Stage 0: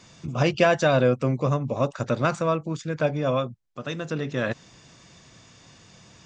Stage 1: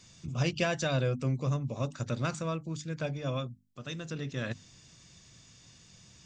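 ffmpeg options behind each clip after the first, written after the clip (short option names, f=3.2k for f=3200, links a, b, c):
-af "equalizer=f=740:w=0.3:g=-13,bandreject=f=50:t=h:w=6,bandreject=f=100:t=h:w=6,bandreject=f=150:t=h:w=6,bandreject=f=200:t=h:w=6,bandreject=f=250:t=h:w=6,bandreject=f=300:t=h:w=6"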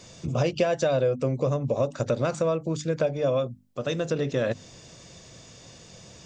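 -af "equalizer=f=540:t=o:w=1.3:g=13.5,acompressor=threshold=-29dB:ratio=4,volume=7dB"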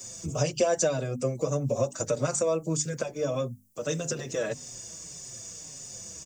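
-filter_complex "[0:a]acrossover=split=180[a][b];[b]aexciter=amount=7.3:drive=5.5:freq=5.6k[c];[a][c]amix=inputs=2:normalize=0,asplit=2[d][e];[e]adelay=5.2,afreqshift=-1.7[f];[d][f]amix=inputs=2:normalize=1"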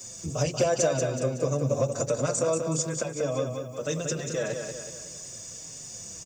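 -af "asoftclip=type=hard:threshold=-16.5dB,aecho=1:1:186|372|558|744|930|1116:0.501|0.236|0.111|0.052|0.0245|0.0115"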